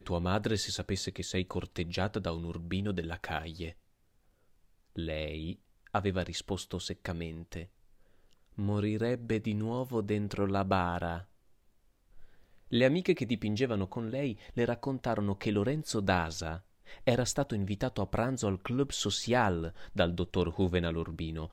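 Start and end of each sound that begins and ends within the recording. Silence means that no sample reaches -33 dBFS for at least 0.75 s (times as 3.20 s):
4.98–7.62 s
8.59–11.18 s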